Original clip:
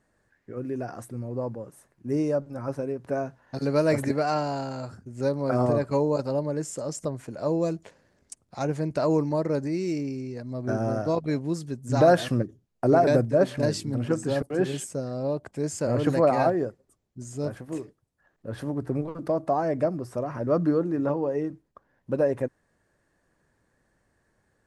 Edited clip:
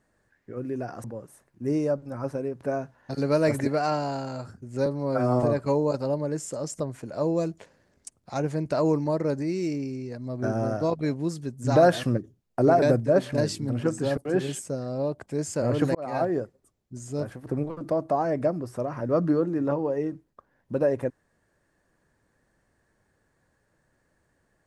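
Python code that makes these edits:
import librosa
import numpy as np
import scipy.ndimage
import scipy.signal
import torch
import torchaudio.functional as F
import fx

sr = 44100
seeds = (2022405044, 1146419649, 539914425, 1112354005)

y = fx.edit(x, sr, fx.cut(start_s=1.04, length_s=0.44),
    fx.stretch_span(start_s=5.3, length_s=0.38, factor=1.5),
    fx.fade_in_span(start_s=16.2, length_s=0.39),
    fx.cut(start_s=17.71, length_s=1.13), tone=tone)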